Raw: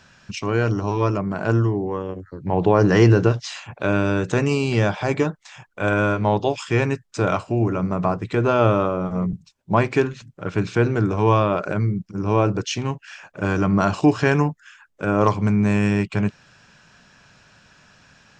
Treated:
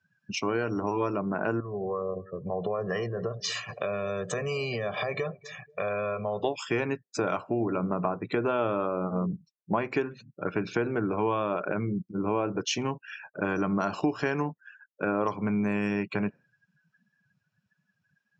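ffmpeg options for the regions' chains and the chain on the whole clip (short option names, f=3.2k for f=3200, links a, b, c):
-filter_complex "[0:a]asettb=1/sr,asplit=3[a][b][c];[a]atrim=end=1.604[d];[b]atrim=start=1.6:end=6.43,asetpts=PTS-STARTPTS,afade=t=in:d=0.004:c=qsin,afade=t=out:st=4.826:d=0.004:c=qsin,aecho=1:1:1.7:0.95,atrim=end_sample=213003,acompressor=threshold=-25dB:ratio=5:attack=3.2:release=140:knee=1:detection=peak,aecho=1:1:241|482|723|964:0.106|0.0498|0.0234|0.011,atrim=end_sample=213003[e];[c]atrim=start=6.426[f];[d][e]acrossfade=d=0.004:c1=hsin:c2=qsin[g];[g][f]acrossfade=d=0.004:c1=qsin:c2=hsin,afftdn=nr=33:nf=-40,highpass=200,acompressor=threshold=-25dB:ratio=4"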